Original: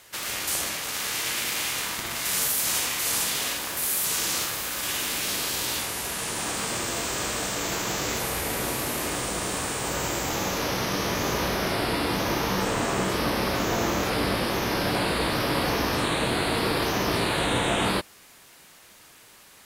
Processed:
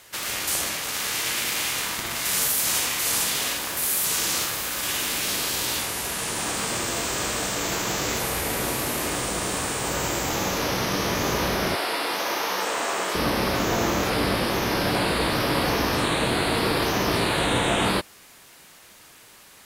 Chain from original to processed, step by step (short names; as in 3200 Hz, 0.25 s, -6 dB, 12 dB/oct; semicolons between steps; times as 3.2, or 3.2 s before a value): 11.75–13.15 HPF 510 Hz 12 dB/oct; gain +2 dB